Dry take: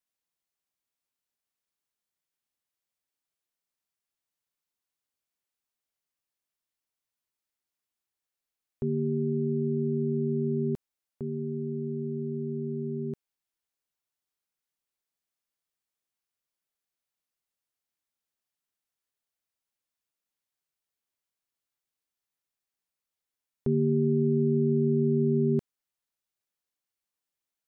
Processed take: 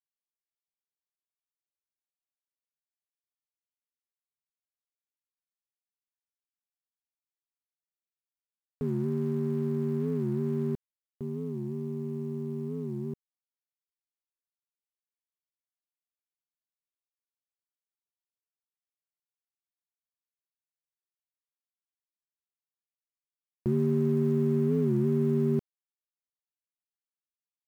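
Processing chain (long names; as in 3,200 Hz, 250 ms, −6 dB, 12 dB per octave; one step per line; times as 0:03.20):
adaptive Wiener filter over 41 samples
log-companded quantiser 8 bits
wow of a warped record 45 rpm, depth 160 cents
level −1 dB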